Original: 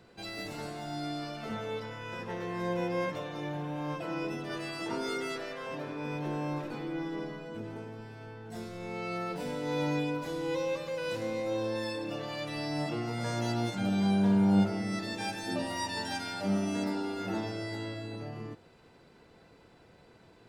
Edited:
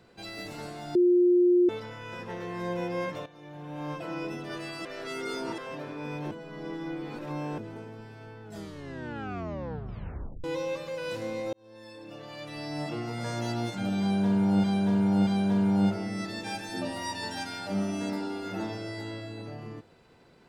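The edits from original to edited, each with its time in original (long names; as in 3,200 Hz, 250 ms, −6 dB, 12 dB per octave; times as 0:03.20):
0:00.95–0:01.69: beep over 355 Hz −17.5 dBFS
0:03.26–0:03.83: fade in quadratic, from −13.5 dB
0:04.85–0:05.58: reverse
0:06.31–0:07.58: reverse
0:08.43: tape stop 2.01 s
0:11.53–0:12.95: fade in
0:14.01–0:14.64: repeat, 3 plays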